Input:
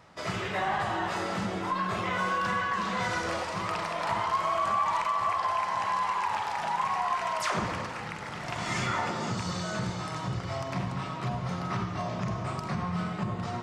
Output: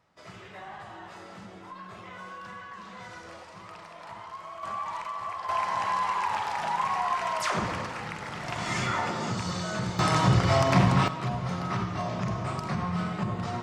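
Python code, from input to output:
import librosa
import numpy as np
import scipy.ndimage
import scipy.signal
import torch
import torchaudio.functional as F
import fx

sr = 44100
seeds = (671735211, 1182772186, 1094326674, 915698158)

y = fx.gain(x, sr, db=fx.steps((0.0, -13.5), (4.63, -7.0), (5.49, 1.0), (9.99, 11.5), (11.08, 1.5)))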